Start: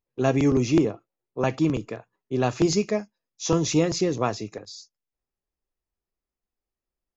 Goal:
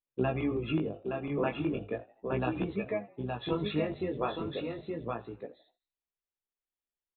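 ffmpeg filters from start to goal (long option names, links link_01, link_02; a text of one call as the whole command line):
ffmpeg -i in.wav -filter_complex "[0:a]bandreject=frequency=50:width_type=h:width=6,bandreject=frequency=100:width_type=h:width=6,bandreject=frequency=150:width_type=h:width=6,afftdn=noise_reduction=15:noise_floor=-33,adynamicequalizer=threshold=0.0141:dfrequency=150:dqfactor=1.5:tfrequency=150:tqfactor=1.5:attack=5:release=100:ratio=0.375:range=1.5:mode=boostabove:tftype=bell,crystalizer=i=3.5:c=0,acompressor=threshold=-29dB:ratio=6,aresample=8000,aresample=44100,asplit=2[link_01][link_02];[link_02]aecho=0:1:869:0.596[link_03];[link_01][link_03]amix=inputs=2:normalize=0,acontrast=47,lowshelf=frequency=280:gain=-7,asplit=2[link_04][link_05];[link_05]asplit=3[link_06][link_07][link_08];[link_06]adelay=83,afreqshift=69,volume=-21dB[link_09];[link_07]adelay=166,afreqshift=138,volume=-27.9dB[link_10];[link_08]adelay=249,afreqshift=207,volume=-34.9dB[link_11];[link_09][link_10][link_11]amix=inputs=3:normalize=0[link_12];[link_04][link_12]amix=inputs=2:normalize=0,asplit=2[link_13][link_14];[link_14]asetrate=22050,aresample=44100,atempo=2,volume=-11dB[link_15];[link_13][link_15]amix=inputs=2:normalize=0,flanger=delay=15.5:depth=6:speed=0.35" out.wav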